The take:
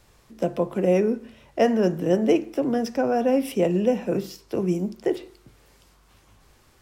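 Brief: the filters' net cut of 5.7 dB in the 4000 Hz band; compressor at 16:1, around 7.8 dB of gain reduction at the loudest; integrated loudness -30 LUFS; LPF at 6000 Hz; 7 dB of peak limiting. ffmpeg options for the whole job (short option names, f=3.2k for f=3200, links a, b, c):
-af "lowpass=6k,equalizer=f=4k:t=o:g=-8.5,acompressor=threshold=-22dB:ratio=16,volume=0.5dB,alimiter=limit=-19.5dB:level=0:latency=1"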